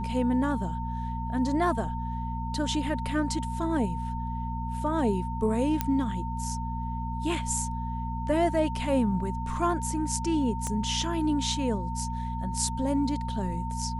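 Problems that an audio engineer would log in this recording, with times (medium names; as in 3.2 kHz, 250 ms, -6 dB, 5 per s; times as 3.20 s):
hum 60 Hz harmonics 4 -33 dBFS
whine 910 Hz -35 dBFS
5.81 s: pop -11 dBFS
10.67 s: pop -19 dBFS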